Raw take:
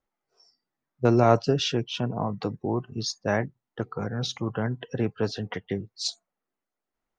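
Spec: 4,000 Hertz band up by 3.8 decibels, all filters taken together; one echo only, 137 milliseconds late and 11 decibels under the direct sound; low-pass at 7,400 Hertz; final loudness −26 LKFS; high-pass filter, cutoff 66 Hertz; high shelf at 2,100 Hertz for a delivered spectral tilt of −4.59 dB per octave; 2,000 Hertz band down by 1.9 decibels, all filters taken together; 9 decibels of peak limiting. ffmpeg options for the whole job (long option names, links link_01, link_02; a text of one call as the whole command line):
ffmpeg -i in.wav -af "highpass=66,lowpass=7400,equalizer=frequency=2000:width_type=o:gain=-3,highshelf=frequency=2100:gain=-3,equalizer=frequency=4000:width_type=o:gain=8.5,alimiter=limit=-16dB:level=0:latency=1,aecho=1:1:137:0.282,volume=3.5dB" out.wav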